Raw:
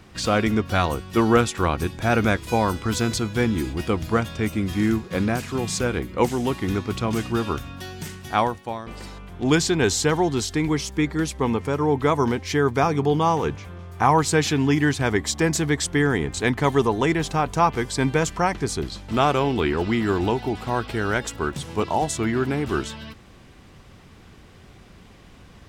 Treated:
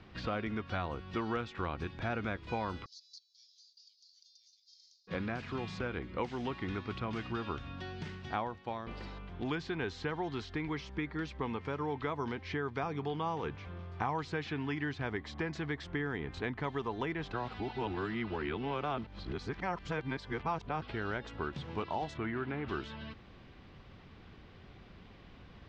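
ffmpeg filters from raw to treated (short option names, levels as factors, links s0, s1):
-filter_complex "[0:a]asplit=3[s0][s1][s2];[s0]afade=t=out:st=2.84:d=0.02[s3];[s1]asuperpass=centerf=5400:order=8:qfactor=2.2,afade=t=in:st=2.84:d=0.02,afade=t=out:st=5.07:d=0.02[s4];[s2]afade=t=in:st=5.07:d=0.02[s5];[s3][s4][s5]amix=inputs=3:normalize=0,asplit=3[s6][s7][s8];[s6]afade=t=out:st=22.13:d=0.02[s9];[s7]lowpass=2600,afade=t=in:st=22.13:d=0.02,afade=t=out:st=22.67:d=0.02[s10];[s8]afade=t=in:st=22.67:d=0.02[s11];[s9][s10][s11]amix=inputs=3:normalize=0,asplit=3[s12][s13][s14];[s12]atrim=end=17.332[s15];[s13]atrim=start=17.328:end=20.822,asetpts=PTS-STARTPTS,areverse[s16];[s14]atrim=start=20.818[s17];[s15][s16]acrossfade=d=0.004:c1=hsin:c2=hsin[s18];[s18][s17]acrossfade=d=0.004:c1=hsin:c2=hsin,lowpass=f=4500:w=0.5412,lowpass=f=4500:w=1.3066,acrossover=split=960|2500[s19][s20][s21];[s19]acompressor=threshold=0.0316:ratio=4[s22];[s20]acompressor=threshold=0.02:ratio=4[s23];[s21]acompressor=threshold=0.00398:ratio=4[s24];[s22][s23][s24]amix=inputs=3:normalize=0,volume=0.473"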